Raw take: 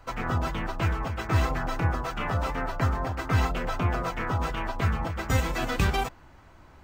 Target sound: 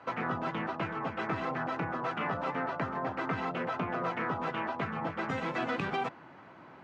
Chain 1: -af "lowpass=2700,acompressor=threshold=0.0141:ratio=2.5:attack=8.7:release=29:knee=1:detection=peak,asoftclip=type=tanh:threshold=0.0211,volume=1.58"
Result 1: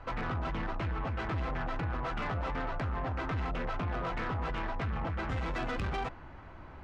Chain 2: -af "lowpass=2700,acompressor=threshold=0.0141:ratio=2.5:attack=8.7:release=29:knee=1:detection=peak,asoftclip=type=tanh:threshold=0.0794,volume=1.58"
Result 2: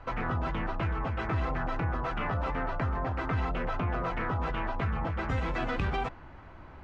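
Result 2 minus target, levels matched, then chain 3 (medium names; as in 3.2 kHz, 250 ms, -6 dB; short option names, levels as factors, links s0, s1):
125 Hz band +7.0 dB
-af "lowpass=2700,acompressor=threshold=0.0141:ratio=2.5:attack=8.7:release=29:knee=1:detection=peak,highpass=f=150:w=0.5412,highpass=f=150:w=1.3066,asoftclip=type=tanh:threshold=0.0794,volume=1.58"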